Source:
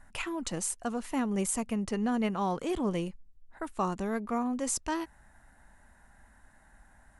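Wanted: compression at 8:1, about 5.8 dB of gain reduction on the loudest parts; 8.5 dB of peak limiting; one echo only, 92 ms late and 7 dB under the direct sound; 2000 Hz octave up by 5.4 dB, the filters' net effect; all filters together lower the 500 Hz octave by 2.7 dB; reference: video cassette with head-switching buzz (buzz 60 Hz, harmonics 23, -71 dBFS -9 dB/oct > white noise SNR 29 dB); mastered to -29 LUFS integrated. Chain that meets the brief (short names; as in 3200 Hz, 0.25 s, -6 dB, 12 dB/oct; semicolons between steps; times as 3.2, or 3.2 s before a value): bell 500 Hz -4 dB; bell 2000 Hz +7 dB; compressor 8:1, threshold -32 dBFS; limiter -30 dBFS; echo 92 ms -7 dB; buzz 60 Hz, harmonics 23, -71 dBFS -9 dB/oct; white noise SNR 29 dB; gain +9.5 dB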